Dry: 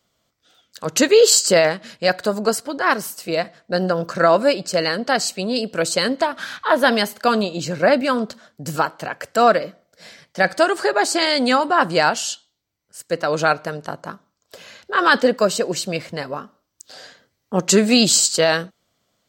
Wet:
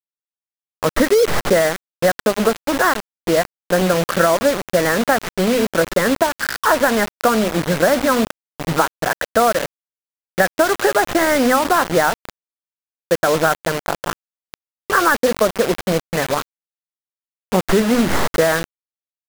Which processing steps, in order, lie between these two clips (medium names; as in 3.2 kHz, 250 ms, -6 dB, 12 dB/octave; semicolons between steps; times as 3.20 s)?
tracing distortion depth 0.075 ms; steep low-pass 2.1 kHz 96 dB/octave; peaking EQ 83 Hz +3.5 dB 0.22 oct; hum notches 50/100/150/200/250 Hz; compression 6:1, threshold -20 dBFS, peak gain reduction 11.5 dB; bit crusher 5-bit; trim +8 dB